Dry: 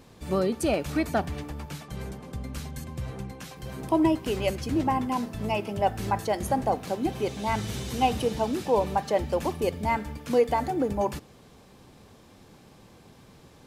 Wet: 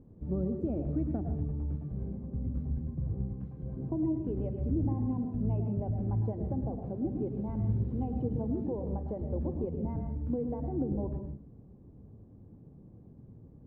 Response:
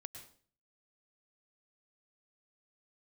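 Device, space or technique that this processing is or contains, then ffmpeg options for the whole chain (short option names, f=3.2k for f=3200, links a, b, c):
television next door: -filter_complex "[0:a]acompressor=threshold=-25dB:ratio=4,lowpass=300[a];[1:a]atrim=start_sample=2205[b];[a][b]afir=irnorm=-1:irlink=0,volume=6dB"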